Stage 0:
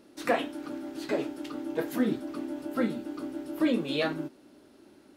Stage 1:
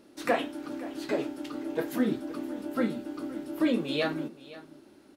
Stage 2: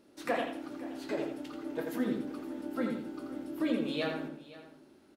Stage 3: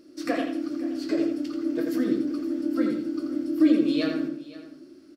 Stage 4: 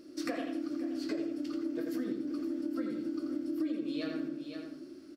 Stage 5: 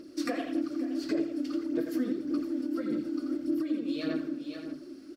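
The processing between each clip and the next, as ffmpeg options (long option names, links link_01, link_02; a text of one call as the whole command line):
ffmpeg -i in.wav -af "aecho=1:1:521:0.126" out.wav
ffmpeg -i in.wav -filter_complex "[0:a]asplit=2[link_01][link_02];[link_02]adelay=84,lowpass=frequency=3600:poles=1,volume=-4dB,asplit=2[link_03][link_04];[link_04]adelay=84,lowpass=frequency=3600:poles=1,volume=0.36,asplit=2[link_05][link_06];[link_06]adelay=84,lowpass=frequency=3600:poles=1,volume=0.36,asplit=2[link_07][link_08];[link_08]adelay=84,lowpass=frequency=3600:poles=1,volume=0.36,asplit=2[link_09][link_10];[link_10]adelay=84,lowpass=frequency=3600:poles=1,volume=0.36[link_11];[link_01][link_03][link_05][link_07][link_09][link_11]amix=inputs=6:normalize=0,volume=-6dB" out.wav
ffmpeg -i in.wav -af "superequalizer=6b=3.55:9b=0.282:14b=2.82:15b=1.41,volume=2.5dB" out.wav
ffmpeg -i in.wav -af "acompressor=threshold=-33dB:ratio=5" out.wav
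ffmpeg -i in.wav -af "aphaser=in_gain=1:out_gain=1:delay=4.2:decay=0.44:speed=1.7:type=sinusoidal,volume=2dB" out.wav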